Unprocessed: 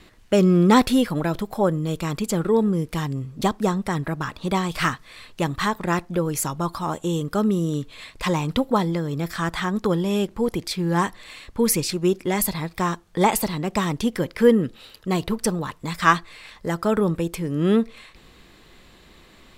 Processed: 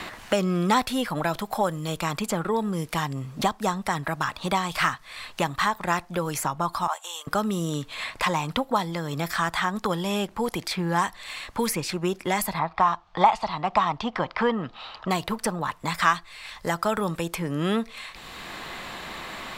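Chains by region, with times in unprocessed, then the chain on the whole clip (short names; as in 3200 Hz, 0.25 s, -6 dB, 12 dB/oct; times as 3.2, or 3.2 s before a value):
6.87–7.27 HPF 730 Hz 24 dB/oct + three-band expander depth 70%
12.59–15.11 Bessel low-pass 3200 Hz, order 4 + band shelf 920 Hz +9.5 dB 1.2 oct
whole clip: resonant low shelf 560 Hz -7 dB, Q 1.5; three-band squash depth 70%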